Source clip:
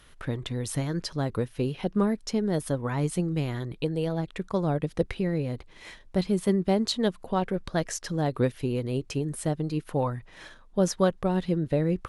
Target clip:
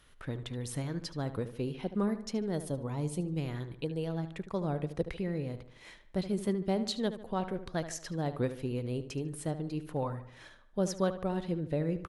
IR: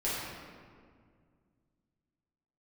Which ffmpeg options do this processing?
-filter_complex "[0:a]asettb=1/sr,asplit=3[a][b][c];[a]atrim=end=2.584[d];[b]atrim=start=2.58:end=3.38,asetpts=PTS-STARTPTS,afade=t=in:d=0.004:c=qsin,afade=t=out:st=0.796:d=0.004:c=qsin,equalizer=f=1.6k:w=1.6:g=-11.5[e];[c]atrim=start=3.376[f];[d][e]acrossfade=d=0.004:c1=hsin:c2=qsin[g];[g][f]acrossfade=d=0.004:c1=qsin:c2=hsin,asplit=2[h][i];[i]adelay=74,lowpass=f=3.5k:p=1,volume=-11.5dB,asplit=2[j][k];[k]adelay=74,lowpass=f=3.5k:p=1,volume=0.46,asplit=2[l][m];[m]adelay=74,lowpass=f=3.5k:p=1,volume=0.46,asplit=2[n][o];[o]adelay=74,lowpass=f=3.5k:p=1,volume=0.46,asplit=2[p][q];[q]adelay=74,lowpass=f=3.5k:p=1,volume=0.46[r];[h][j][l][n][p][r]amix=inputs=6:normalize=0,volume=-7dB"

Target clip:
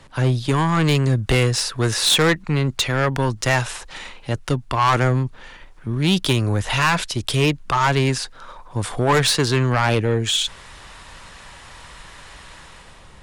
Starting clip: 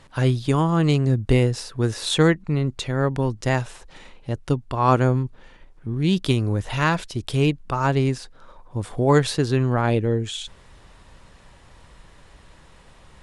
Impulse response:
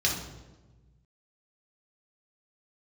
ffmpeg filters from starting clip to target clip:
-filter_complex "[0:a]acrossover=split=140|830[a][b][c];[c]dynaudnorm=f=150:g=9:m=10dB[d];[a][b][d]amix=inputs=3:normalize=0,asoftclip=type=tanh:threshold=-15dB,volume=3.5dB"

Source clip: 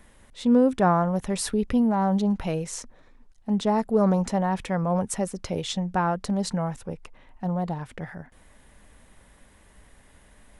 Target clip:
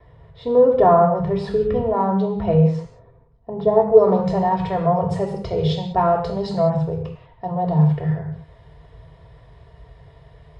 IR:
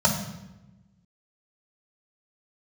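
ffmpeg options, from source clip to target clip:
-filter_complex "[0:a]asetnsamples=n=441:p=0,asendcmd='2.79 lowpass f 1300;3.91 lowpass f 3700',lowpass=2.2k[a];[1:a]atrim=start_sample=2205,atrim=end_sample=6615,asetrate=31752,aresample=44100[b];[a][b]afir=irnorm=-1:irlink=0,volume=-12.5dB"

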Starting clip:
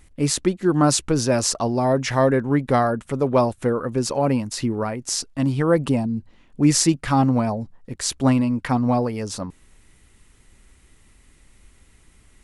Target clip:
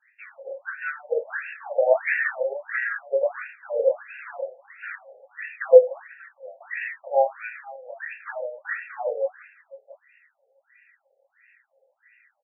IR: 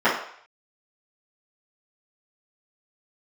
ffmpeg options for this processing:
-filter_complex "[0:a]lowshelf=f=150:g=-7.5,acrossover=split=590|5000[a][b][c];[b]acontrast=83[d];[a][d][c]amix=inputs=3:normalize=0,asplit=3[e][f][g];[e]bandpass=f=530:t=q:w=8,volume=0dB[h];[f]bandpass=f=1.84k:t=q:w=8,volume=-6dB[i];[g]bandpass=f=2.48k:t=q:w=8,volume=-9dB[j];[h][i][j]amix=inputs=3:normalize=0,asplit=2[k][l];[l]acrusher=bits=2:mode=log:mix=0:aa=0.000001,volume=-5.5dB[m];[k][m]amix=inputs=2:normalize=0,aecho=1:1:491:0.133[n];[1:a]atrim=start_sample=2205,asetrate=70560,aresample=44100[o];[n][o]afir=irnorm=-1:irlink=0,afftfilt=real='re*between(b*sr/1024,580*pow(2000/580,0.5+0.5*sin(2*PI*1.5*pts/sr))/1.41,580*pow(2000/580,0.5+0.5*sin(2*PI*1.5*pts/sr))*1.41)':imag='im*between(b*sr/1024,580*pow(2000/580,0.5+0.5*sin(2*PI*1.5*pts/sr))/1.41,580*pow(2000/580,0.5+0.5*sin(2*PI*1.5*pts/sr))*1.41)':win_size=1024:overlap=0.75,volume=-9.5dB"

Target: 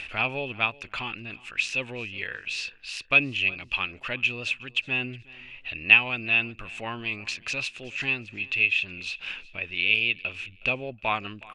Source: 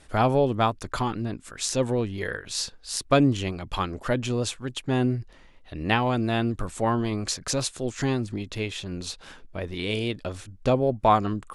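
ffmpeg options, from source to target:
-filter_complex "[0:a]acompressor=mode=upward:threshold=-27dB:ratio=2.5,lowpass=f=2.6k:t=q:w=14,crystalizer=i=7.5:c=0,asplit=2[a][b];[b]aecho=0:1:367|734:0.0794|0.0214[c];[a][c]amix=inputs=2:normalize=0,volume=-13.5dB"

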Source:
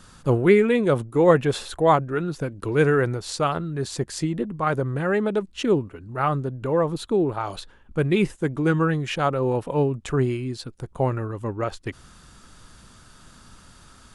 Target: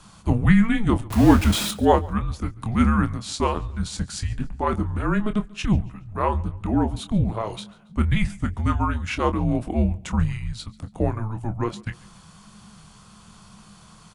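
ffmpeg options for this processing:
-filter_complex "[0:a]asettb=1/sr,asplit=3[a][b][c];[a]atrim=end=1.104[d];[b]atrim=start=1.1:end=1.71,asetpts=PTS-STARTPTS,afade=t=in:d=0.004:c=qsin,afade=t=out:st=0.606:d=0.004:c=qsin,aeval=exprs='val(0)+0.5*0.0708*sgn(val(0))':c=same[e];[c]atrim=start=1.706[f];[d][e]acrossfade=d=0.004:c1=hsin:c2=qsin[g];[g][f]acrossfade=d=0.004:c1=qsin:c2=hsin,asplit=2[h][i];[i]aecho=0:1:140|280|420:0.0708|0.029|0.0119[j];[h][j]amix=inputs=2:normalize=0,afreqshift=-220,asplit=2[k][l];[l]adelay=25,volume=-10dB[m];[k][m]amix=inputs=2:normalize=0"

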